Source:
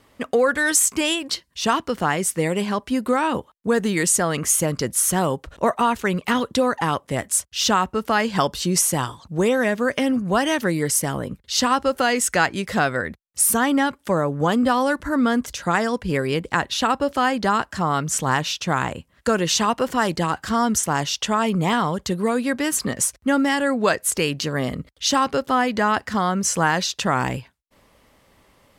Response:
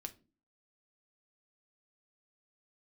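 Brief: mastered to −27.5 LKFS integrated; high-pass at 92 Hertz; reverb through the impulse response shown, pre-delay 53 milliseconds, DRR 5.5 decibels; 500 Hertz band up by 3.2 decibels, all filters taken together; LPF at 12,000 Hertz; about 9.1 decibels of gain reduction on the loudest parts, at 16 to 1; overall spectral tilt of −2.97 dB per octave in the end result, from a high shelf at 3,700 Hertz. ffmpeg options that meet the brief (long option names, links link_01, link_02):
-filter_complex "[0:a]highpass=92,lowpass=12000,equalizer=frequency=500:width_type=o:gain=3.5,highshelf=frequency=3700:gain=8,acompressor=threshold=-17dB:ratio=16,asplit=2[link_01][link_02];[1:a]atrim=start_sample=2205,adelay=53[link_03];[link_02][link_03]afir=irnorm=-1:irlink=0,volume=-2dB[link_04];[link_01][link_04]amix=inputs=2:normalize=0,volume=-6dB"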